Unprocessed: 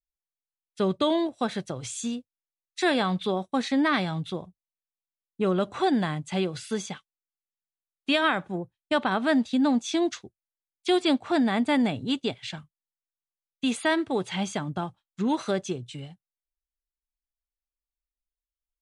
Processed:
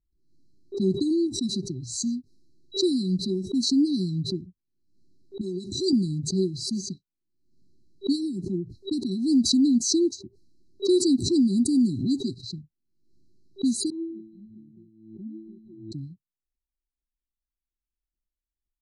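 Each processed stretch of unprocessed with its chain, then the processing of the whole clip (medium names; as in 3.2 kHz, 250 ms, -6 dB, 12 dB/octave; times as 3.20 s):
5.41–5.93 s: tone controls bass -9 dB, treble +12 dB + compression 2.5:1, threshold -27 dBFS + comb 1.7 ms, depth 32%
13.90–15.92 s: bass shelf 160 Hz -5 dB + careless resampling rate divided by 6×, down none, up filtered + feedback comb 110 Hz, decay 0.73 s, mix 100%
whole clip: level-controlled noise filter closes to 1.3 kHz, open at -21 dBFS; FFT band-reject 390–3900 Hz; swell ahead of each attack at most 70 dB/s; trim +3 dB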